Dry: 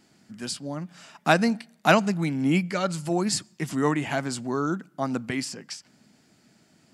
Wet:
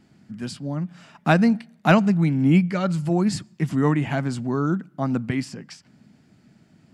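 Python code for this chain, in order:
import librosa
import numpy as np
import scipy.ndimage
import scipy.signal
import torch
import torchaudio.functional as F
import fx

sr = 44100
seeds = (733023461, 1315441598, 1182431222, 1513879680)

y = fx.bass_treble(x, sr, bass_db=10, treble_db=-8)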